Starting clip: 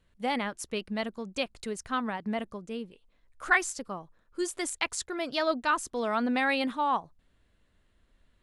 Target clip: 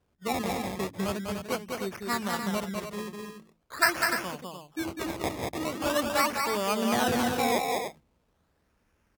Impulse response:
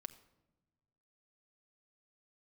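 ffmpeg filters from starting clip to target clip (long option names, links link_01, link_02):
-filter_complex "[0:a]acrusher=samples=19:mix=1:aa=0.000001:lfo=1:lforange=19:lforate=0.46,highpass=68,bandreject=frequency=60:width_type=h:width=6,bandreject=frequency=120:width_type=h:width=6,bandreject=frequency=180:width_type=h:width=6,bandreject=frequency=240:width_type=h:width=6,bandreject=frequency=300:width_type=h:width=6,bandreject=frequency=360:width_type=h:width=6,asplit=2[link_01][link_02];[link_02]aecho=0:1:183.7|271.1:0.631|0.398[link_03];[link_01][link_03]amix=inputs=2:normalize=0,asetrate=40517,aresample=44100"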